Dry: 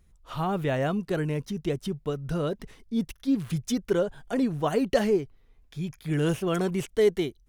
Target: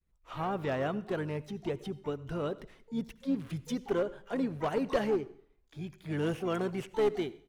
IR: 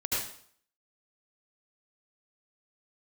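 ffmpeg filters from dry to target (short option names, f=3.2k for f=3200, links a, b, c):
-filter_complex "[0:a]agate=range=-33dB:threshold=-53dB:ratio=3:detection=peak,bass=f=250:g=-5,treble=f=4k:g=-9,asplit=3[a][b][c];[b]asetrate=29433,aresample=44100,atempo=1.49831,volume=-16dB[d];[c]asetrate=88200,aresample=44100,atempo=0.5,volume=-17dB[e];[a][d][e]amix=inputs=3:normalize=0,aeval=exprs='clip(val(0),-1,0.0944)':c=same,asplit=2[f][g];[1:a]atrim=start_sample=2205[h];[g][h]afir=irnorm=-1:irlink=0,volume=-24.5dB[i];[f][i]amix=inputs=2:normalize=0,volume=-5dB"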